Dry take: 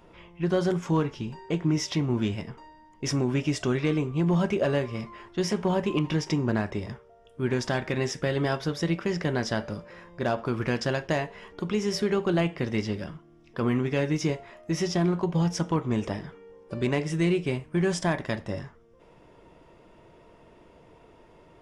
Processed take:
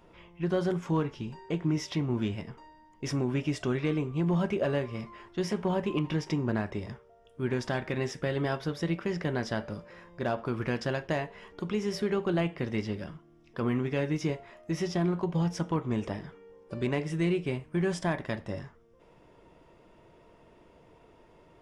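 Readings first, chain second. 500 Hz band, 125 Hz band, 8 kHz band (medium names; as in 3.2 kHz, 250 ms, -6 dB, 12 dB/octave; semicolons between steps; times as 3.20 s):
-3.5 dB, -3.5 dB, -8.0 dB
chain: dynamic bell 6.5 kHz, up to -5 dB, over -51 dBFS, Q 0.99; trim -3.5 dB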